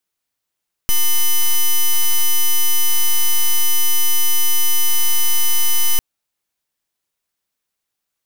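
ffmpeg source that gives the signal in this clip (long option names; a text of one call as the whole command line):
ffmpeg -f lavfi -i "aevalsrc='0.237*(2*lt(mod(3000*t,1),0.05)-1)':duration=5.1:sample_rate=44100" out.wav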